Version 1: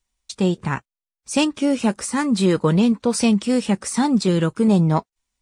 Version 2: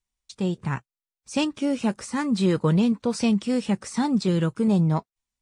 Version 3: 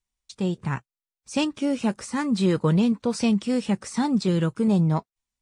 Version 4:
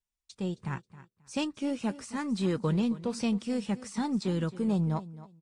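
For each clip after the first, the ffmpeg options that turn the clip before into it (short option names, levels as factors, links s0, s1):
-filter_complex "[0:a]acrossover=split=7800[s0][s1];[s1]acompressor=threshold=0.00447:ratio=4:attack=1:release=60[s2];[s0][s2]amix=inputs=2:normalize=0,equalizer=f=130:t=o:w=0.83:g=5.5,dynaudnorm=f=120:g=11:m=2.24,volume=0.355"
-af anull
-af "aecho=1:1:268|536:0.15|0.0329,aeval=exprs='0.316*(cos(1*acos(clip(val(0)/0.316,-1,1)))-cos(1*PI/2))+0.00708*(cos(4*acos(clip(val(0)/0.316,-1,1)))-cos(4*PI/2))+0.00708*(cos(6*acos(clip(val(0)/0.316,-1,1)))-cos(6*PI/2))':c=same,volume=0.422"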